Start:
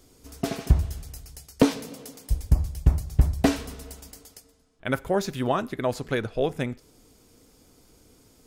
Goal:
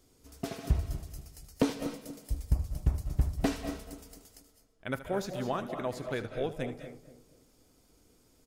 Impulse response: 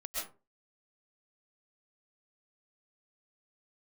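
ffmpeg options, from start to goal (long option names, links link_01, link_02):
-filter_complex "[0:a]asplit=2[link_01][link_02];[link_02]adelay=241,lowpass=frequency=830:poles=1,volume=-10.5dB,asplit=2[link_03][link_04];[link_04]adelay=241,lowpass=frequency=830:poles=1,volume=0.37,asplit=2[link_05][link_06];[link_06]adelay=241,lowpass=frequency=830:poles=1,volume=0.37,asplit=2[link_07][link_08];[link_08]adelay=241,lowpass=frequency=830:poles=1,volume=0.37[link_09];[link_01][link_03][link_05][link_07][link_09]amix=inputs=5:normalize=0,asplit=2[link_10][link_11];[1:a]atrim=start_sample=2205,adelay=77[link_12];[link_11][link_12]afir=irnorm=-1:irlink=0,volume=-9dB[link_13];[link_10][link_13]amix=inputs=2:normalize=0,volume=-8.5dB"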